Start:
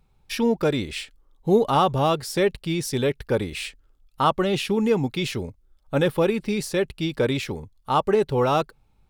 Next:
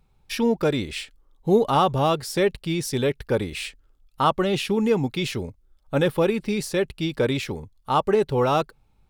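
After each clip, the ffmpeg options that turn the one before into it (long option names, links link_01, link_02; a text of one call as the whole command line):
ffmpeg -i in.wav -af anull out.wav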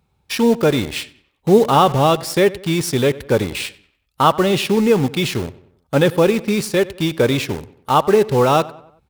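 ffmpeg -i in.wav -filter_complex "[0:a]highpass=frequency=57:width=0.5412,highpass=frequency=57:width=1.3066,asplit=2[link_01][link_02];[link_02]acrusher=bits=4:mix=0:aa=0.000001,volume=-3.5dB[link_03];[link_01][link_03]amix=inputs=2:normalize=0,asplit=2[link_04][link_05];[link_05]adelay=94,lowpass=frequency=3500:poles=1,volume=-19dB,asplit=2[link_06][link_07];[link_07]adelay=94,lowpass=frequency=3500:poles=1,volume=0.46,asplit=2[link_08][link_09];[link_09]adelay=94,lowpass=frequency=3500:poles=1,volume=0.46,asplit=2[link_10][link_11];[link_11]adelay=94,lowpass=frequency=3500:poles=1,volume=0.46[link_12];[link_04][link_06][link_08][link_10][link_12]amix=inputs=5:normalize=0,volume=2dB" out.wav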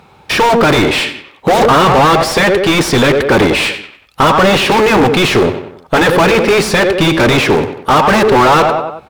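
ffmpeg -i in.wav -filter_complex "[0:a]afftfilt=real='re*lt(hypot(re,im),1.26)':imag='im*lt(hypot(re,im),1.26)':win_size=1024:overlap=0.75,asplit=2[link_01][link_02];[link_02]highpass=frequency=720:poles=1,volume=34dB,asoftclip=type=tanh:threshold=-4dB[link_03];[link_01][link_03]amix=inputs=2:normalize=0,lowpass=frequency=1600:poles=1,volume=-6dB,aecho=1:1:113:0.0794,volume=3.5dB" out.wav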